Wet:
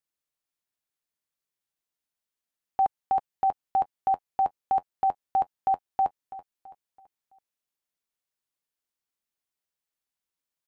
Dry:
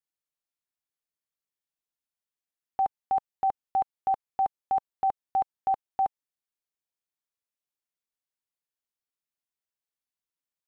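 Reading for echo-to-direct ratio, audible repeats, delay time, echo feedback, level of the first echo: -14.0 dB, 3, 331 ms, 42%, -15.0 dB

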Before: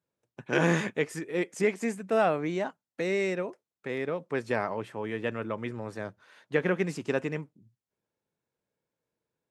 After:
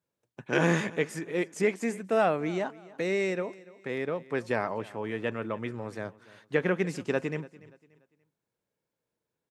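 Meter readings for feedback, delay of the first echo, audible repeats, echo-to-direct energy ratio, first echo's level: 34%, 290 ms, 2, -20.0 dB, -20.5 dB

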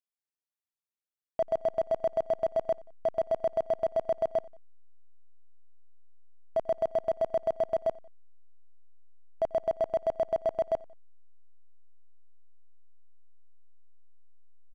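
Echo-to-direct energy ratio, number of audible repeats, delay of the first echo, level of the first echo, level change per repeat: -21.5 dB, 2, 90 ms, -22.5 dB, -6.0 dB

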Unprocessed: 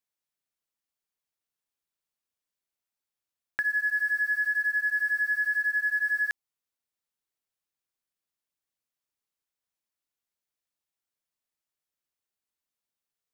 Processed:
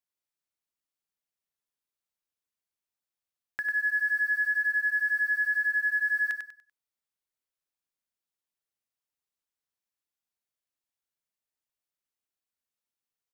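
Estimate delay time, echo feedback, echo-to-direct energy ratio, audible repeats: 97 ms, 30%, -5.0 dB, 3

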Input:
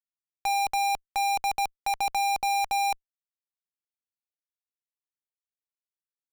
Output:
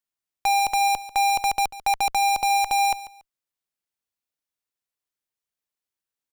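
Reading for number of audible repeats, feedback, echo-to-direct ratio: 2, 22%, -16.0 dB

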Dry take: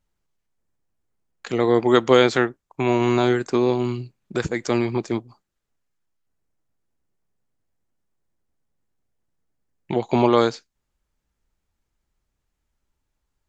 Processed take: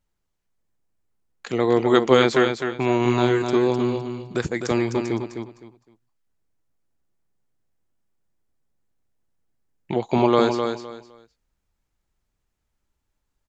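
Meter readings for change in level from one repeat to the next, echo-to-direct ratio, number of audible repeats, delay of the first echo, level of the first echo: -13.0 dB, -6.5 dB, 3, 256 ms, -6.5 dB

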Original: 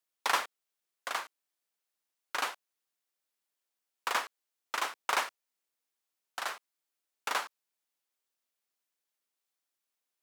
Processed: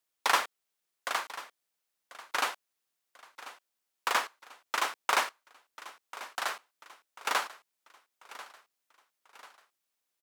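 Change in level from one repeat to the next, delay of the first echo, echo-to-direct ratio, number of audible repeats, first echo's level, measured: -7.0 dB, 1041 ms, -15.5 dB, 3, -16.5 dB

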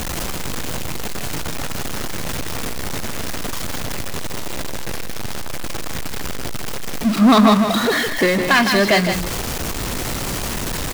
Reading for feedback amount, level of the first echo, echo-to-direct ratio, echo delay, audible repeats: no regular repeats, -7.5 dB, -7.5 dB, 159 ms, 1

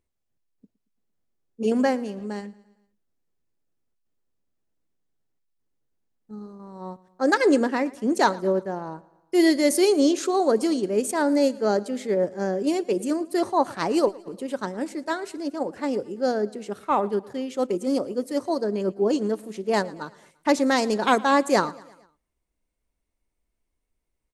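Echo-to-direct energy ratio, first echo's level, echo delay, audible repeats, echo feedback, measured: -20.5 dB, -22.0 dB, 114 ms, 3, 54%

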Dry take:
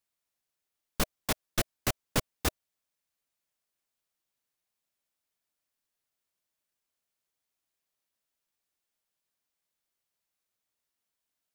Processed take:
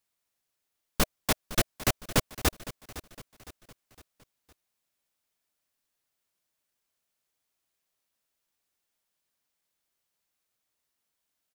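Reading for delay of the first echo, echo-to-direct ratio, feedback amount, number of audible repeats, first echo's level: 510 ms, -15.0 dB, 46%, 3, -16.0 dB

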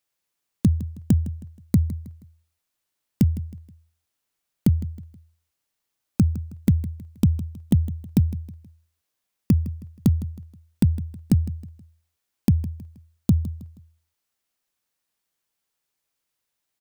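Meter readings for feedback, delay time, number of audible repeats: 37%, 159 ms, 3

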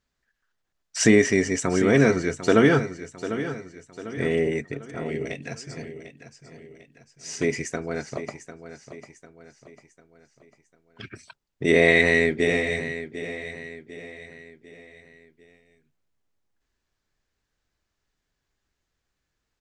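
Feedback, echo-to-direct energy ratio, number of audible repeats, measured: 44%, -11.0 dB, 4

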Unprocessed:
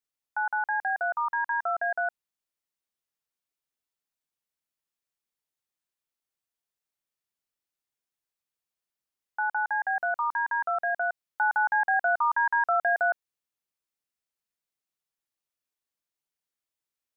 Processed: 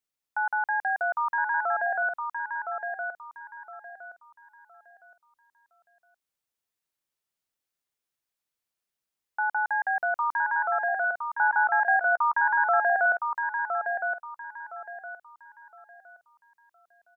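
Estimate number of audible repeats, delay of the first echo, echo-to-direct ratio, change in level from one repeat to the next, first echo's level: 3, 1014 ms, -5.0 dB, -11.0 dB, -5.5 dB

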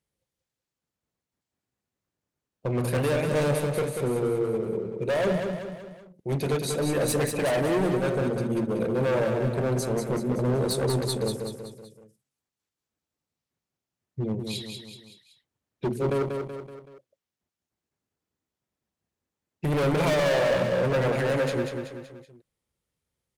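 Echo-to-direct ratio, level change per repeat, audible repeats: -4.5 dB, -6.0 dB, 4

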